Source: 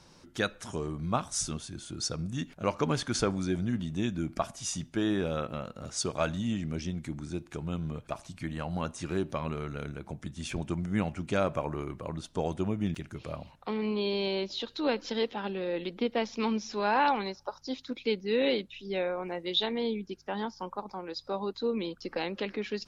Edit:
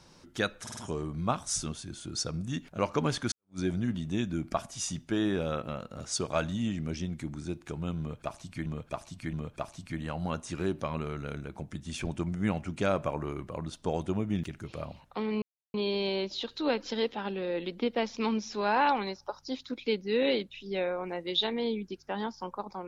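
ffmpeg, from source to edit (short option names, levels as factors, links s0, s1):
-filter_complex "[0:a]asplit=8[s0][s1][s2][s3][s4][s5][s6][s7];[s0]atrim=end=0.672[s8];[s1]atrim=start=0.618:end=0.672[s9];[s2]atrim=start=0.618:end=0.672[s10];[s3]atrim=start=0.618:end=3.17,asetpts=PTS-STARTPTS,afade=t=out:st=2.548:d=0.004:c=hsin[s11];[s4]atrim=start=3.17:end=8.512,asetpts=PTS-STARTPTS,afade=t=in:d=0.27:c=exp[s12];[s5]atrim=start=7.838:end=8.512[s13];[s6]atrim=start=7.838:end=13.93,asetpts=PTS-STARTPTS,afade=t=out:st=6.088:d=0.004:c=hsin,apad=pad_dur=0.32[s14];[s7]atrim=start=13.93,asetpts=PTS-STARTPTS,afade=t=in:d=0.004:c=hsin[s15];[s8][s9]acrossfade=d=0.004:c1=hsin:c2=hsin[s16];[s16][s10]acrossfade=d=0.004:c1=hsin:c2=hsin[s17];[s11][s12]concat=n=2:v=0:a=1[s18];[s17][s18]acrossfade=d=0.004:c1=hsin:c2=hsin[s19];[s19][s13]acrossfade=d=0.004:c1=hsin:c2=hsin[s20];[s14][s15]concat=n=2:v=0:a=1[s21];[s20][s21]acrossfade=d=0.004:c1=hsin:c2=hsin"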